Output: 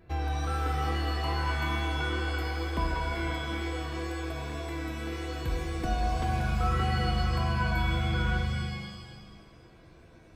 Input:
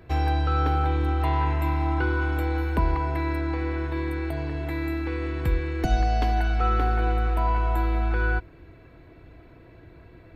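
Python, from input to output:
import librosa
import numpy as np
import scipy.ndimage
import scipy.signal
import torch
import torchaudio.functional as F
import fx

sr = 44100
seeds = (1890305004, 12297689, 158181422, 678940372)

y = fx.wow_flutter(x, sr, seeds[0], rate_hz=2.1, depth_cents=30.0)
y = fx.rev_shimmer(y, sr, seeds[1], rt60_s=1.5, semitones=7, shimmer_db=-2, drr_db=3.5)
y = y * 10.0 ** (-8.0 / 20.0)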